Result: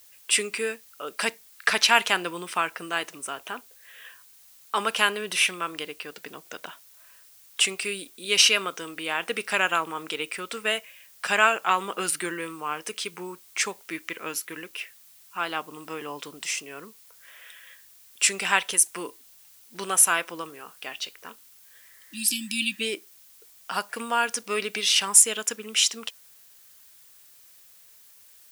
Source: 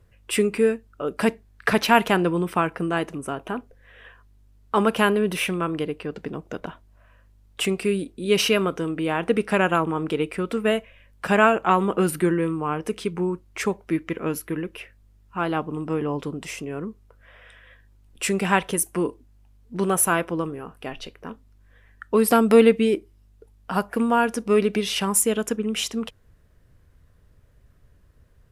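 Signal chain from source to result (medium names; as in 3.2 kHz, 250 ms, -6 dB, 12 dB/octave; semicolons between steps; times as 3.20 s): frequency weighting ITU-R 468; spectral replace 21.89–22.78 s, 330–2300 Hz before; added noise blue -50 dBFS; trim -3.5 dB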